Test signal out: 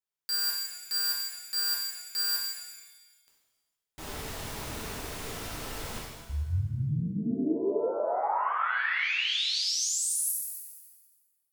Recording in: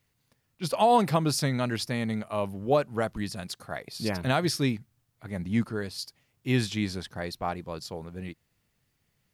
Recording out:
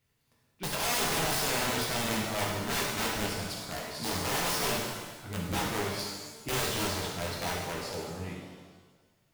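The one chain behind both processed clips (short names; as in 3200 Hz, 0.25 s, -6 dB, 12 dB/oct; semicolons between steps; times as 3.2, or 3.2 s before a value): wrapped overs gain 24.5 dB; shimmer reverb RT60 1.3 s, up +7 st, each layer -8 dB, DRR -4 dB; gain -5 dB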